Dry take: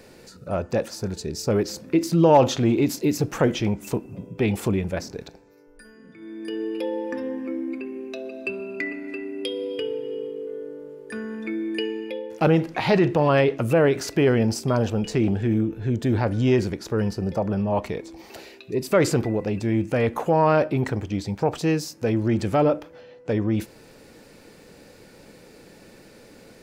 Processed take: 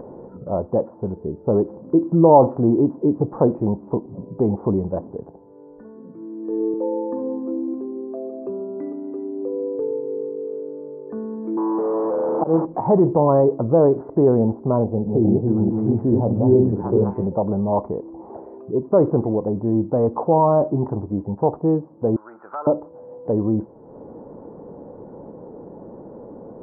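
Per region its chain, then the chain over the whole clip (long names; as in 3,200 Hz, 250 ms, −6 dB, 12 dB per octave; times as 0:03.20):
0:05.16–0:06.74: high-pass filter 70 Hz + multiband upward and downward expander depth 40%
0:11.57–0:12.65: linear delta modulator 16 kbit/s, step −18 dBFS + high-pass filter 210 Hz + volume swells 105 ms
0:14.84–0:17.27: delay that plays each chunk backwards 214 ms, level −2 dB + double-tracking delay 26 ms −11.5 dB + multiband delay without the direct sound lows, highs 630 ms, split 830 Hz
0:20.38–0:21.05: low-pass filter 1,900 Hz 6 dB per octave + parametric band 490 Hz −6.5 dB 0.3 octaves + double-tracking delay 21 ms −11 dB
0:22.16–0:22.67: high-pass with resonance 1,400 Hz, resonance Q 9.5 + downward compressor 1.5 to 1, threshold −25 dBFS
whole clip: elliptic low-pass filter 1,000 Hz, stop band 70 dB; low-shelf EQ 67 Hz −12 dB; upward compression, threshold −34 dBFS; level +4.5 dB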